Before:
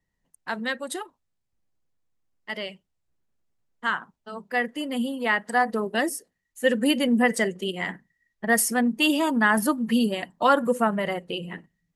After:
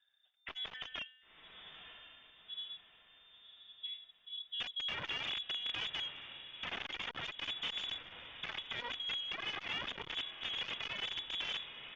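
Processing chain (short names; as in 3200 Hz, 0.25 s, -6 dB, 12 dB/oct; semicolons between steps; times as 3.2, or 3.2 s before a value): comb 1.4 ms, depth 34%; in parallel at +2 dB: limiter -17.5 dBFS, peak gain reduction 11 dB; on the sum: tremolo 0.6 Hz, depth 54%; low-pass sweep 2300 Hz -> 210 Hz, 0.63–1.38; overloaded stage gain 8 dB; resonator 260 Hz, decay 1.1 s, mix 60%; wrapped overs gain 31 dB; inverted band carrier 3600 Hz; on a send: diffused feedback echo 1.011 s, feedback 41%, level -12 dB; on the sum: core saturation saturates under 1000 Hz; gain -2 dB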